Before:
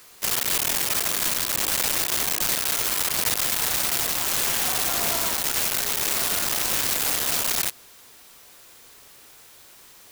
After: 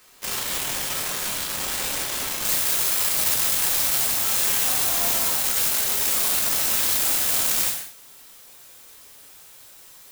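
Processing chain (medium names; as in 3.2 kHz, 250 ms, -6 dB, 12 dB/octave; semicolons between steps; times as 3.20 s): treble shelf 6.3 kHz -3 dB, from 2.45 s +5 dB; gated-style reverb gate 250 ms falling, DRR -1 dB; trim -5 dB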